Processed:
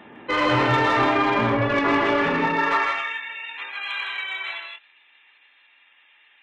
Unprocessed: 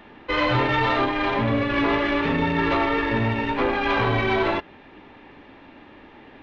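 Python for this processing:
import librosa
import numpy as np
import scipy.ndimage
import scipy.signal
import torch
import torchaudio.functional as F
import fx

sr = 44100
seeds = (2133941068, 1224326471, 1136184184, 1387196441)

y = fx.spec_gate(x, sr, threshold_db=-25, keep='strong')
y = fx.filter_sweep_highpass(y, sr, from_hz=130.0, to_hz=3000.0, start_s=2.21, end_s=3.03, q=0.94)
y = 10.0 ** (-18.5 / 20.0) * np.tanh(y / 10.0 ** (-18.5 / 20.0))
y = fx.echo_multitap(y, sr, ms=(126, 159, 184), db=(-9.0, -5.0, -9.0))
y = fx.dynamic_eq(y, sr, hz=1200.0, q=1.1, threshold_db=-39.0, ratio=4.0, max_db=4)
y = F.gain(torch.from_numpy(y), 1.0).numpy()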